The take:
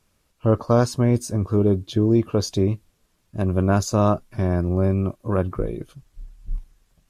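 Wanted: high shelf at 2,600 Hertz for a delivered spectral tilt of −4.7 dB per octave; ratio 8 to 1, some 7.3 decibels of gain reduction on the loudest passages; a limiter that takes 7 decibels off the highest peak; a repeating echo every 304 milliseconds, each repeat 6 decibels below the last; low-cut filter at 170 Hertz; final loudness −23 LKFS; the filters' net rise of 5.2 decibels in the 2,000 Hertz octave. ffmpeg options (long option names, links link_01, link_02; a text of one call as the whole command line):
ffmpeg -i in.wav -af "highpass=170,equalizer=frequency=2000:width_type=o:gain=4.5,highshelf=frequency=2600:gain=7.5,acompressor=threshold=-20dB:ratio=8,alimiter=limit=-15.5dB:level=0:latency=1,aecho=1:1:304|608|912|1216|1520|1824:0.501|0.251|0.125|0.0626|0.0313|0.0157,volume=5dB" out.wav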